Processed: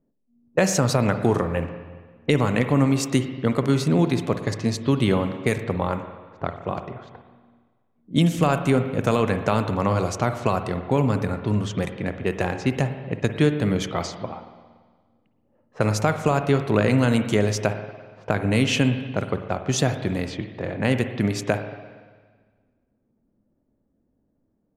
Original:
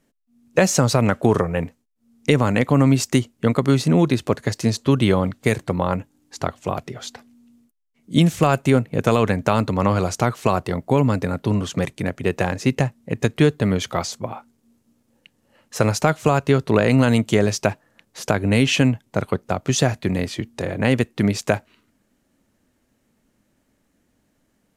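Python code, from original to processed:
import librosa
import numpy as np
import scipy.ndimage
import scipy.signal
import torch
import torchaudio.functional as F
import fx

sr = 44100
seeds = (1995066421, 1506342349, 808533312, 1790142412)

y = fx.env_lowpass(x, sr, base_hz=600.0, full_db=-17.5)
y = fx.rev_spring(y, sr, rt60_s=1.5, pass_ms=(47, 57), chirp_ms=75, drr_db=8.0)
y = y * 10.0 ** (-3.5 / 20.0)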